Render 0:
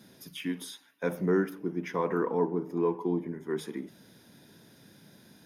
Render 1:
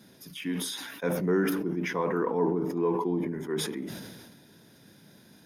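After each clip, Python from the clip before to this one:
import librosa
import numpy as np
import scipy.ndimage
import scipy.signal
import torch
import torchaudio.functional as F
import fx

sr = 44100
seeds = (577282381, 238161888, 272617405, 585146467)

y = fx.sustainer(x, sr, db_per_s=35.0)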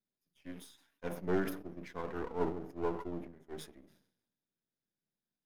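y = np.where(x < 0.0, 10.0 ** (-12.0 / 20.0) * x, x)
y = fx.upward_expand(y, sr, threshold_db=-49.0, expansion=2.5)
y = y * librosa.db_to_amplitude(-1.5)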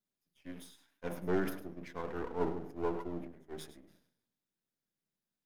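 y = x + 10.0 ** (-13.5 / 20.0) * np.pad(x, (int(103 * sr / 1000.0), 0))[:len(x)]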